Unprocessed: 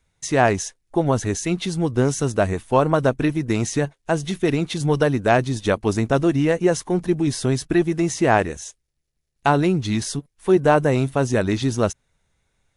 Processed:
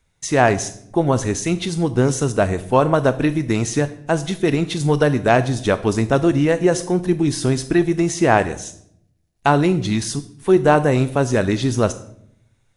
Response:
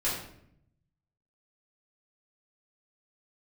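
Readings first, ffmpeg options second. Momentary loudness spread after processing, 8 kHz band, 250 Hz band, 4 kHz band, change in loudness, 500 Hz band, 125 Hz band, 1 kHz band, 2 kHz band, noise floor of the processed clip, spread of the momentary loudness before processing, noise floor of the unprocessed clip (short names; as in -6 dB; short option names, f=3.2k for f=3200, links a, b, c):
7 LU, +2.5 dB, +2.5 dB, +2.5 dB, +2.0 dB, +2.0 dB, +2.5 dB, +2.0 dB, +2.0 dB, -63 dBFS, 7 LU, -73 dBFS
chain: -filter_complex "[0:a]asplit=2[a][b];[1:a]atrim=start_sample=2205,highshelf=f=4.9k:g=10.5,adelay=24[c];[b][c]afir=irnorm=-1:irlink=0,volume=-22.5dB[d];[a][d]amix=inputs=2:normalize=0,volume=2dB"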